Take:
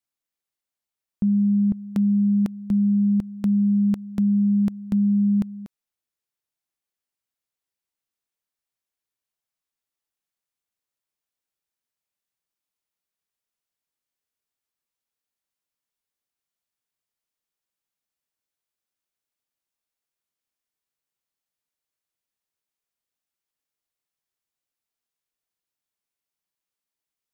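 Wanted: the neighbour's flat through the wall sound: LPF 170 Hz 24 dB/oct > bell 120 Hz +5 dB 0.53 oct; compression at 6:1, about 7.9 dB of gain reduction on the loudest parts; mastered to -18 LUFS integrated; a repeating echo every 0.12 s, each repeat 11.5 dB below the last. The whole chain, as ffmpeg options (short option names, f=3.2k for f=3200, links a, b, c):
-af "acompressor=threshold=-26dB:ratio=6,lowpass=f=170:w=0.5412,lowpass=f=170:w=1.3066,equalizer=f=120:t=o:w=0.53:g=5,aecho=1:1:120|240|360:0.266|0.0718|0.0194,volume=18.5dB"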